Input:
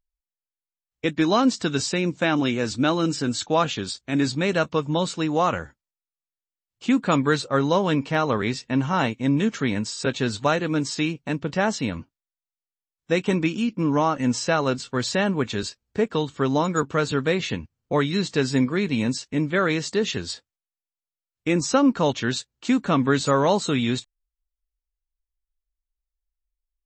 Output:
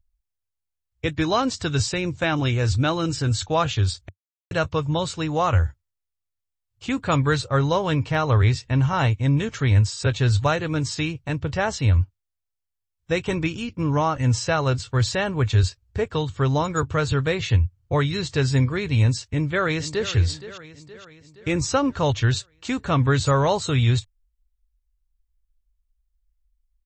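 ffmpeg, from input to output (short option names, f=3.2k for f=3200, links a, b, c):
-filter_complex "[0:a]asplit=2[a][b];[b]afade=t=in:st=19.24:d=0.01,afade=t=out:st=20.1:d=0.01,aecho=0:1:470|940|1410|1880|2350|2820:0.199526|0.109739|0.0603567|0.0331962|0.0182579|0.0100418[c];[a][c]amix=inputs=2:normalize=0,asplit=3[d][e][f];[d]atrim=end=4.09,asetpts=PTS-STARTPTS,afade=t=out:st=4.086:d=0.004:c=hsin[g];[e]atrim=start=4.09:end=4.51,asetpts=PTS-STARTPTS,volume=0[h];[f]atrim=start=4.51,asetpts=PTS-STARTPTS,afade=t=in:d=0.004:c=hsin[i];[g][h][i]concat=n=3:v=0:a=1,lowshelf=f=140:t=q:w=3:g=14"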